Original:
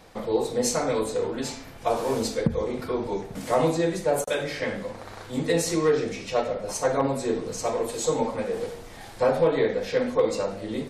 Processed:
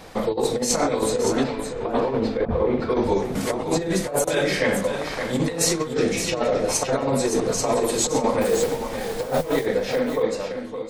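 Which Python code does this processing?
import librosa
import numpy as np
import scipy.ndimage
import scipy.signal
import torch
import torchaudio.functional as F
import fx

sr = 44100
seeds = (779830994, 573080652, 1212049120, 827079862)

p1 = fx.fade_out_tail(x, sr, length_s=1.64)
p2 = fx.over_compress(p1, sr, threshold_db=-27.0, ratio=-0.5)
p3 = fx.air_absorb(p2, sr, metres=400.0, at=(1.42, 2.89), fade=0.02)
p4 = fx.mod_noise(p3, sr, seeds[0], snr_db=19, at=(8.41, 9.66))
p5 = fx.hum_notches(p4, sr, base_hz=50, count=3)
p6 = p5 + fx.echo_single(p5, sr, ms=567, db=-8.0, dry=0)
y = F.gain(torch.from_numpy(p6), 6.0).numpy()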